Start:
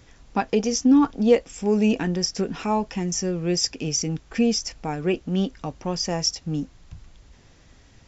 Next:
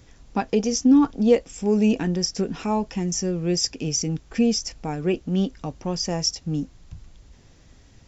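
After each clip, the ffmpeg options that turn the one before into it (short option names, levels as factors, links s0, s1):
-af "equalizer=f=1600:w=0.38:g=-4.5,volume=1.19"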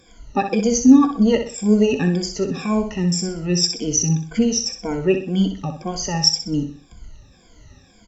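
-filter_complex "[0:a]afftfilt=real='re*pow(10,23/40*sin(2*PI*(1.8*log(max(b,1)*sr/1024/100)/log(2)-(-1.9)*(pts-256)/sr)))':imag='im*pow(10,23/40*sin(2*PI*(1.8*log(max(b,1)*sr/1024/100)/log(2)-(-1.9)*(pts-256)/sr)))':win_size=1024:overlap=0.75,asplit=2[s0][s1];[s1]aecho=0:1:63|126|189|252:0.398|0.143|0.0516|0.0186[s2];[s0][s2]amix=inputs=2:normalize=0,volume=0.841"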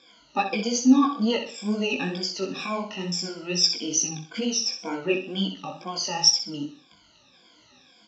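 -af "highpass=340,equalizer=f=430:t=q:w=4:g=-9,equalizer=f=700:t=q:w=4:g=-4,equalizer=f=1900:t=q:w=4:g=-9,lowpass=f=4200:w=0.5412,lowpass=f=4200:w=1.3066,crystalizer=i=3.5:c=0,flanger=delay=15.5:depth=6.4:speed=2.2,volume=1.19"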